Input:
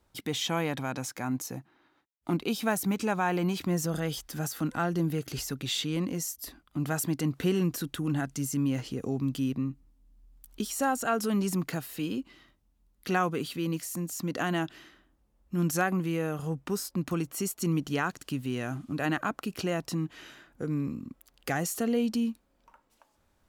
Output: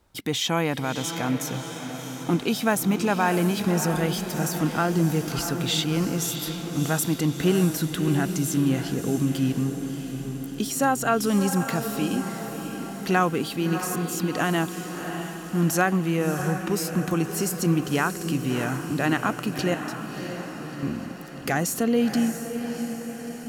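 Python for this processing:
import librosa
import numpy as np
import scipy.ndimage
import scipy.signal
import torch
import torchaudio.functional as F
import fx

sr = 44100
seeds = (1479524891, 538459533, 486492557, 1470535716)

p1 = fx.level_steps(x, sr, step_db=23, at=(19.74, 20.83))
p2 = p1 + fx.echo_diffused(p1, sr, ms=653, feedback_pct=60, wet_db=-8.0, dry=0)
y = F.gain(torch.from_numpy(p2), 5.5).numpy()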